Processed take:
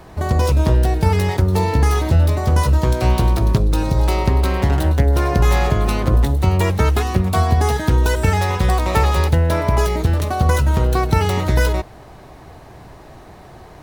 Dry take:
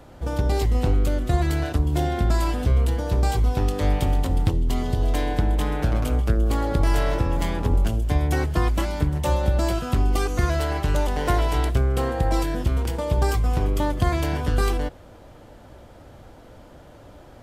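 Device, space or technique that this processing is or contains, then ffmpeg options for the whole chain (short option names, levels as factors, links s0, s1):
nightcore: -af "asetrate=55566,aresample=44100,volume=1.88"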